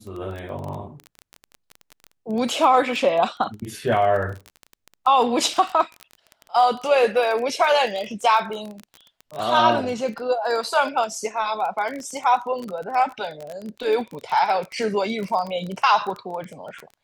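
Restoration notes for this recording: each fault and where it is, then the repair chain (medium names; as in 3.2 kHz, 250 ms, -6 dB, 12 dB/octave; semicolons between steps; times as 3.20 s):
crackle 22 per s -27 dBFS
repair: de-click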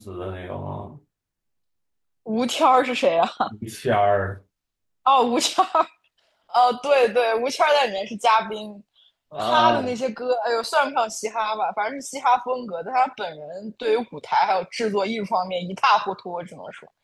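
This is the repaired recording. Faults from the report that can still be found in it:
nothing left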